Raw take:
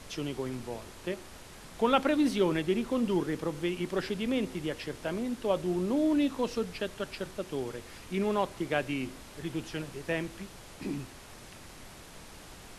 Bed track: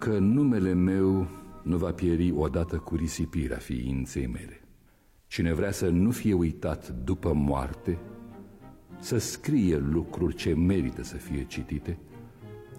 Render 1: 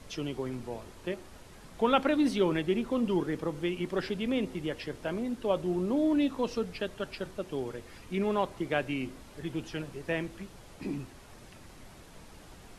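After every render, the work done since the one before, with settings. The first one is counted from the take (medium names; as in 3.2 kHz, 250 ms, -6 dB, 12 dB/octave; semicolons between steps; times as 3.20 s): noise reduction 6 dB, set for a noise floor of -49 dBFS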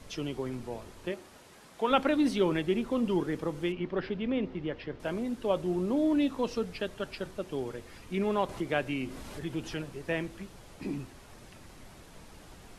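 1.09–1.89 s: high-pass 150 Hz -> 470 Hz 6 dB/octave; 3.72–5.00 s: distance through air 250 m; 8.49–9.83 s: upward compressor, threshold -33 dBFS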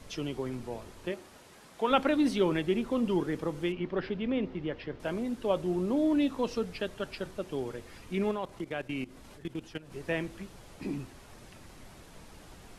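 8.31–9.92 s: level held to a coarse grid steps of 17 dB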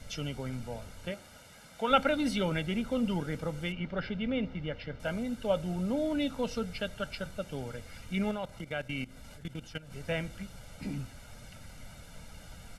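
peaking EQ 750 Hz -7 dB 0.56 oct; comb 1.4 ms, depth 78%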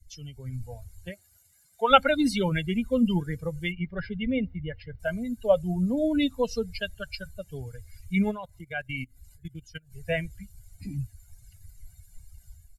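expander on every frequency bin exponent 2; level rider gain up to 10.5 dB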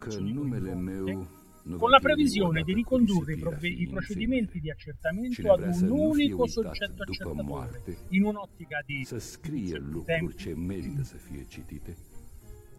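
add bed track -9.5 dB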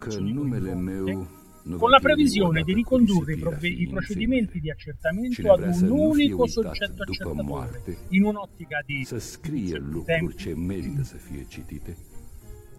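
trim +4.5 dB; peak limiter -1 dBFS, peak gain reduction 2.5 dB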